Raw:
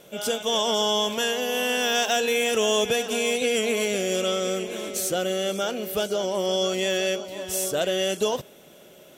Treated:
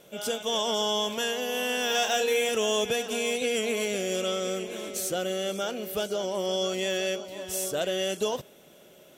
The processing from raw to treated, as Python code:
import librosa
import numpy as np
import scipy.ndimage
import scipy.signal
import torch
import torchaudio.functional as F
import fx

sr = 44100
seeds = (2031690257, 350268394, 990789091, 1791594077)

y = fx.doubler(x, sr, ms=32.0, db=-5.0, at=(1.87, 2.49))
y = y * librosa.db_to_amplitude(-4.0)